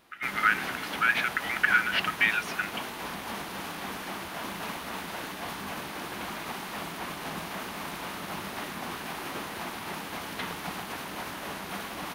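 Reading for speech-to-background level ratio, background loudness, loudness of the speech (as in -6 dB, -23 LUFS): 9.5 dB, -36.0 LUFS, -26.5 LUFS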